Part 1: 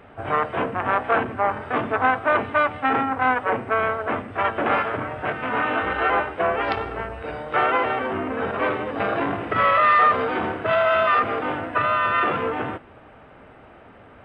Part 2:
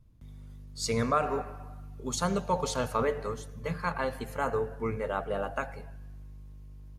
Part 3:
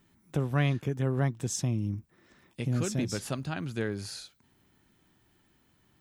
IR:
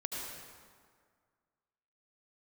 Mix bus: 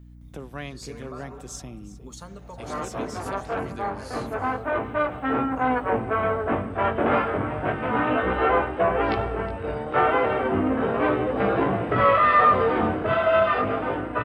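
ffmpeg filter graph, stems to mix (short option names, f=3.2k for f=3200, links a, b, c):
-filter_complex "[0:a]equalizer=f=2.4k:w=0.35:g=-9.5,dynaudnorm=f=550:g=11:m=10dB,flanger=delay=15.5:depth=7:speed=0.33,adelay=2400,volume=-1dB,asplit=2[a][b];[b]volume=-16.5dB[c];[1:a]acompressor=threshold=-34dB:ratio=6,volume=-5dB,asplit=2[d][e];[e]volume=-18dB[f];[2:a]highpass=250,volume=-4.5dB,asplit=2[g][h];[h]volume=-17dB[i];[c][f][i]amix=inputs=3:normalize=0,aecho=0:1:365:1[j];[a][d][g][j]amix=inputs=4:normalize=0,aeval=exprs='val(0)+0.00562*(sin(2*PI*60*n/s)+sin(2*PI*2*60*n/s)/2+sin(2*PI*3*60*n/s)/3+sin(2*PI*4*60*n/s)/4+sin(2*PI*5*60*n/s)/5)':c=same"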